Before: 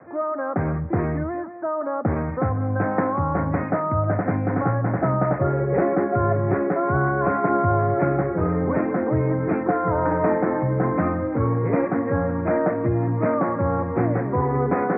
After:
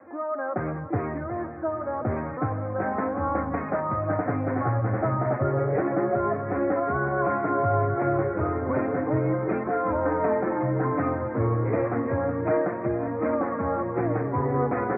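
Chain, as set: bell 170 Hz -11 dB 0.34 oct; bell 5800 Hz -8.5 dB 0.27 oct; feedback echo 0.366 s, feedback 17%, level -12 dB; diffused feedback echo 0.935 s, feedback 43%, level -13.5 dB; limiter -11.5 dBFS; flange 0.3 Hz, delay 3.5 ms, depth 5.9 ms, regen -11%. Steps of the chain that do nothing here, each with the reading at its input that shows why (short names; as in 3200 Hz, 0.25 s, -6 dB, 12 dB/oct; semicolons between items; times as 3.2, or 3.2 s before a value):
bell 5800 Hz: input band ends at 1900 Hz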